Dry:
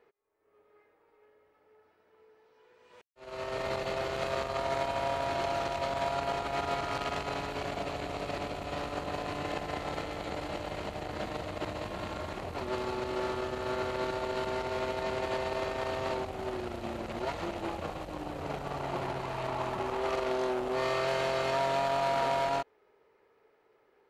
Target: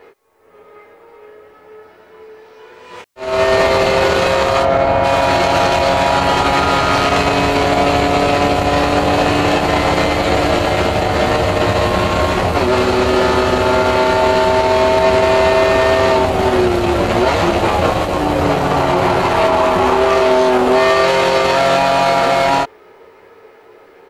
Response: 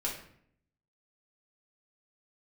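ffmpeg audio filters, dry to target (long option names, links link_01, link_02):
-filter_complex "[0:a]asettb=1/sr,asplit=3[link_01][link_02][link_03];[link_01]atrim=end=4.624[link_04];[link_02]atrim=start=4.62:end=5.04,asetpts=PTS-STARTPTS,afade=type=in:duration=0.004:curve=qsin,afade=type=out:start_time=0.416:duration=0.004:curve=qsin,lowpass=frequency=1100:poles=1[link_05];[link_03]atrim=start=5.036[link_06];[link_04][link_05]acrossfade=duration=0.004:curve1=hsin:curve2=qsin[link_07];[link_07][link_06]acrossfade=duration=0.004:curve1=qsin:curve2=hsin,asplit=2[link_08][link_09];[link_09]aecho=0:1:11|28:0.596|0.562[link_10];[link_08][link_10]amix=inputs=2:normalize=0,alimiter=level_in=24.5dB:limit=-1dB:release=50:level=0:latency=1,volume=-3dB"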